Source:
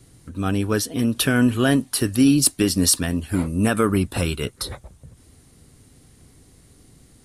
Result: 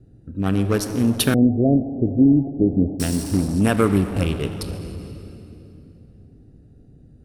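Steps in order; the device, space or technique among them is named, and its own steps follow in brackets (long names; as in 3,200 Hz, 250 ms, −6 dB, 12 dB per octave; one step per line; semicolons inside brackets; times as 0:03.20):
adaptive Wiener filter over 41 samples
saturated reverb return (on a send at −4 dB: convolution reverb RT60 2.8 s, pre-delay 14 ms + soft clipping −24 dBFS, distortion −7 dB)
0:01.34–0:03.00: on the sum: Butterworth low-pass 720 Hz 72 dB per octave
level +2 dB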